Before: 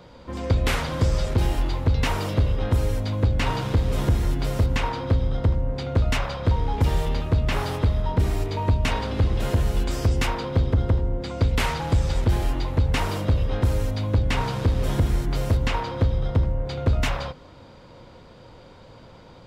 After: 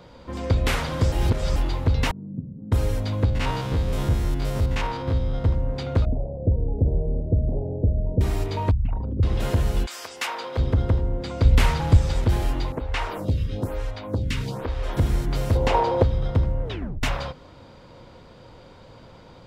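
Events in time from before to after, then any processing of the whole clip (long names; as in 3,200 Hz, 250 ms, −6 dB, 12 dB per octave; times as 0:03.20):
0:01.12–0:01.56: reverse
0:02.11–0:02.72: flat-topped band-pass 190 Hz, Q 1.9
0:03.25–0:05.46: spectrum averaged block by block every 50 ms
0:06.05–0:08.21: Butterworth low-pass 650 Hz 48 dB per octave
0:08.71–0:09.23: spectral envelope exaggerated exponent 3
0:09.85–0:10.57: high-pass filter 1,300 Hz → 440 Hz
0:11.45–0:11.97: low-shelf EQ 140 Hz +9 dB
0:12.72–0:14.97: phaser with staggered stages 1.1 Hz
0:15.55–0:16.03: flat-topped bell 570 Hz +10.5 dB
0:16.63: tape stop 0.40 s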